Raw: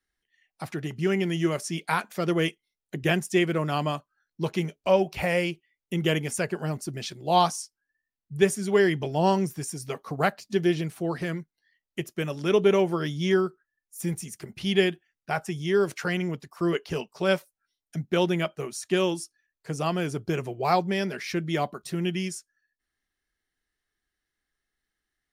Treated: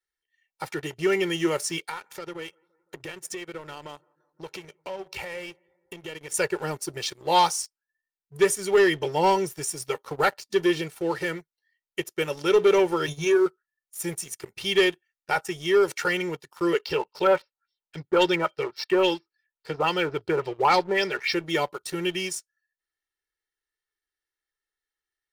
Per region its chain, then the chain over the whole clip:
1.86–6.34 s: treble shelf 11 kHz -5.5 dB + compression 10:1, threshold -34 dBFS + bucket-brigade echo 171 ms, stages 2048, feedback 67%, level -21 dB
13.06–13.46 s: rippled EQ curve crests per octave 1.5, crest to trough 17 dB + compression 3:1, threshold -18 dBFS + transient shaper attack -5 dB, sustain -11 dB
16.82–21.35 s: LFO low-pass sine 3.6 Hz 960–6300 Hz + careless resampling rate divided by 4×, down none, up filtered
whole clip: bass shelf 240 Hz -12 dB; comb 2.2 ms, depth 76%; waveshaping leveller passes 2; trim -4 dB

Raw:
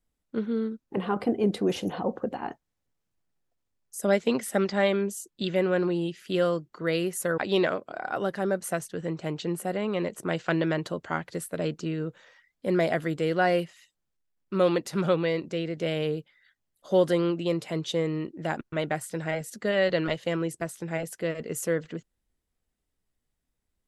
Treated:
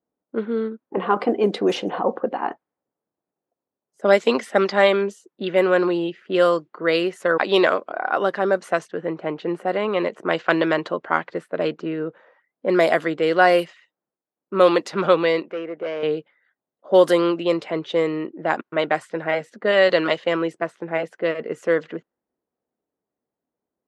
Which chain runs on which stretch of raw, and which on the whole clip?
15.43–16.03 s: high-pass 490 Hz 6 dB/octave + high-order bell 6.5 kHz -14.5 dB + hard clipper -30 dBFS
whole clip: high-pass 320 Hz 12 dB/octave; dynamic bell 1.1 kHz, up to +5 dB, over -45 dBFS, Q 3.3; level-controlled noise filter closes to 770 Hz, open at -21 dBFS; trim +8.5 dB

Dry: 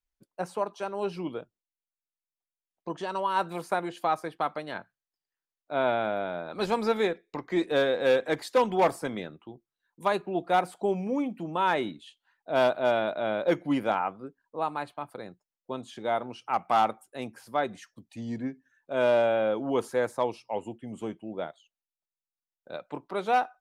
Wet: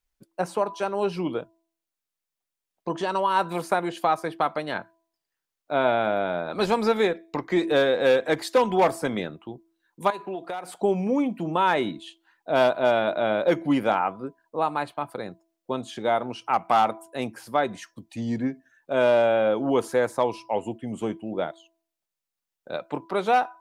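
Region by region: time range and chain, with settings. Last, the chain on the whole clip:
10.10–10.73 s: bass shelf 220 Hz -12 dB + compression 12:1, threshold -35 dBFS
whole clip: de-hum 330.5 Hz, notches 3; compression 1.5:1, threshold -29 dBFS; trim +7 dB

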